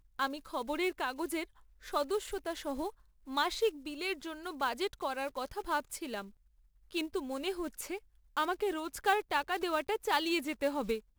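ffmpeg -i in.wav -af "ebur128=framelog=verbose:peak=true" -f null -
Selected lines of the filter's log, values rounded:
Integrated loudness:
  I:         -35.2 LUFS
  Threshold: -45.4 LUFS
Loudness range:
  LRA:         4.6 LU
  Threshold: -56.0 LUFS
  LRA low:   -38.0 LUFS
  LRA high:  -33.4 LUFS
True peak:
  Peak:      -15.4 dBFS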